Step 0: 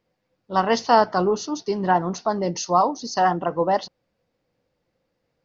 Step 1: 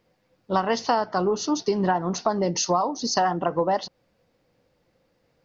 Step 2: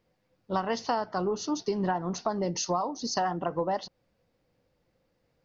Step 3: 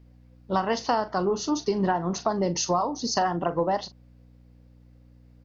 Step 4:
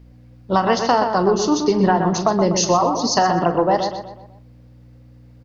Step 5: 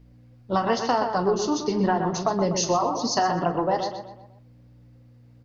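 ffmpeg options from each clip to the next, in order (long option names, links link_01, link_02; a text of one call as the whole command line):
ffmpeg -i in.wav -af "acompressor=threshold=-26dB:ratio=6,volume=6.5dB" out.wav
ffmpeg -i in.wav -af "lowshelf=frequency=110:gain=6,volume=-6.5dB" out.wav
ffmpeg -i in.wav -filter_complex "[0:a]aeval=exprs='val(0)+0.00178*(sin(2*PI*60*n/s)+sin(2*PI*2*60*n/s)/2+sin(2*PI*3*60*n/s)/3+sin(2*PI*4*60*n/s)/4+sin(2*PI*5*60*n/s)/5)':channel_layout=same,asplit=2[link_01][link_02];[link_02]adelay=41,volume=-13.5dB[link_03];[link_01][link_03]amix=inputs=2:normalize=0,volume=4dB" out.wav
ffmpeg -i in.wav -filter_complex "[0:a]asplit=2[link_01][link_02];[link_02]adelay=124,lowpass=frequency=2900:poles=1,volume=-6dB,asplit=2[link_03][link_04];[link_04]adelay=124,lowpass=frequency=2900:poles=1,volume=0.45,asplit=2[link_05][link_06];[link_06]adelay=124,lowpass=frequency=2900:poles=1,volume=0.45,asplit=2[link_07][link_08];[link_08]adelay=124,lowpass=frequency=2900:poles=1,volume=0.45,asplit=2[link_09][link_10];[link_10]adelay=124,lowpass=frequency=2900:poles=1,volume=0.45[link_11];[link_01][link_03][link_05][link_07][link_09][link_11]amix=inputs=6:normalize=0,volume=7.5dB" out.wav
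ffmpeg -i in.wav -af "flanger=delay=6.7:depth=2.3:regen=-55:speed=0.84:shape=triangular,volume=-2dB" out.wav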